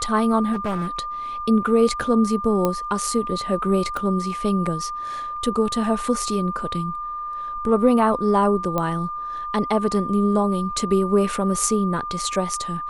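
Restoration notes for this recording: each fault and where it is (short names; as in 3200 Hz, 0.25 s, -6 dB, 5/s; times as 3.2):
tone 1200 Hz -27 dBFS
0.52–0.87 clipped -20.5 dBFS
2.65 pop -8 dBFS
3.97 pop -15 dBFS
8.78 pop -10 dBFS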